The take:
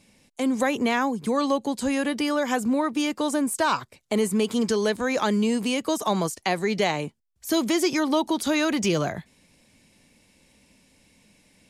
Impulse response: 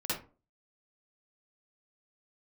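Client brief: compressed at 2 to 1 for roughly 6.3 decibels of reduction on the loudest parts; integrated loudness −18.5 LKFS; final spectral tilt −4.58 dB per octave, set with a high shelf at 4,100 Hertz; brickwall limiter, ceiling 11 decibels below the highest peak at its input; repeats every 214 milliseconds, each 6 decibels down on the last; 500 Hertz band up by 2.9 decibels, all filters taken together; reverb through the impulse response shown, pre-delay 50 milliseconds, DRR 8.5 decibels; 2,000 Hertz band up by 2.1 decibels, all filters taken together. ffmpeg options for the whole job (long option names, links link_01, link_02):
-filter_complex "[0:a]equalizer=frequency=500:width_type=o:gain=3.5,equalizer=frequency=2000:width_type=o:gain=3.5,highshelf=frequency=4100:gain=-5,acompressor=threshold=-28dB:ratio=2,alimiter=level_in=0.5dB:limit=-24dB:level=0:latency=1,volume=-0.5dB,aecho=1:1:214|428|642|856|1070|1284:0.501|0.251|0.125|0.0626|0.0313|0.0157,asplit=2[link_01][link_02];[1:a]atrim=start_sample=2205,adelay=50[link_03];[link_02][link_03]afir=irnorm=-1:irlink=0,volume=-14dB[link_04];[link_01][link_04]amix=inputs=2:normalize=0,volume=12.5dB"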